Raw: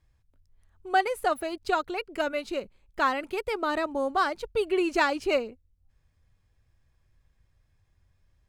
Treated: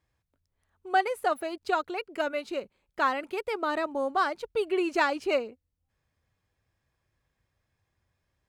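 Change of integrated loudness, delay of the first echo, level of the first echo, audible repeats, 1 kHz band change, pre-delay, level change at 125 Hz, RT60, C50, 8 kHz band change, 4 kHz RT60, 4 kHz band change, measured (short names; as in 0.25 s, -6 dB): -1.0 dB, none, none, none, -1.0 dB, none, n/a, none, none, -3.5 dB, none, -2.5 dB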